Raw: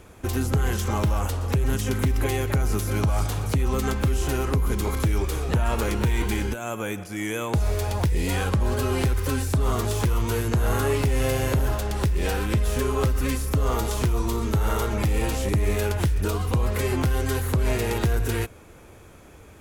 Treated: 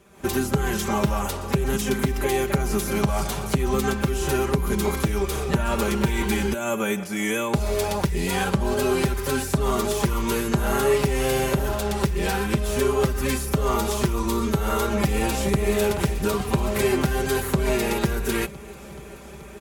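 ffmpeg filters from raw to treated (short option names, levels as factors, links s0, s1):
-filter_complex "[0:a]asplit=2[s0][s1];[s1]afade=t=in:st=14.94:d=0.01,afade=t=out:st=15.71:d=0.01,aecho=0:1:430|860|1290|1720|2150|2580|3010|3440|3870|4300|4730|5160:0.281838|0.225471|0.180377|0.144301|0.115441|0.0923528|0.0738822|0.0591058|0.0472846|0.0378277|0.0302622|0.0242097[s2];[s0][s2]amix=inputs=2:normalize=0,highpass=65,aecho=1:1:5.1:0.86,dynaudnorm=f=120:g=3:m=3.76,volume=0.398"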